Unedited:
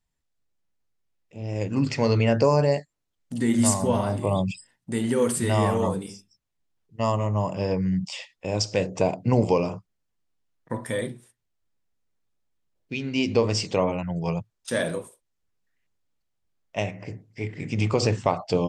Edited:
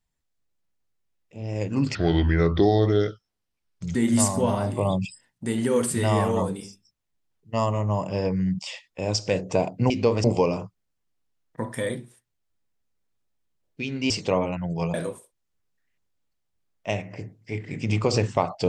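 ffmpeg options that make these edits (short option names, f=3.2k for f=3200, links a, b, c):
-filter_complex "[0:a]asplit=7[a][b][c][d][e][f][g];[a]atrim=end=1.954[h];[b]atrim=start=1.95:end=3.41,asetpts=PTS-STARTPTS,asetrate=32193,aresample=44100[i];[c]atrim=start=3.406:end=9.362[j];[d]atrim=start=13.218:end=13.562[k];[e]atrim=start=9.358:end=13.222[l];[f]atrim=start=13.558:end=14.402[m];[g]atrim=start=14.828[n];[h][i]acrossfade=d=0.004:c1=hsin:c2=hsin[o];[o][j]acrossfade=d=0.004:c1=hsin:c2=hsin[p];[p][k]acrossfade=d=0.004:c1=hsin:c2=hsin[q];[q][l]acrossfade=d=0.004:c1=hsin:c2=hsin[r];[r][m]acrossfade=d=0.004:c1=hsin:c2=hsin[s];[s][n]acrossfade=d=0.004:c1=hsin:c2=hsin"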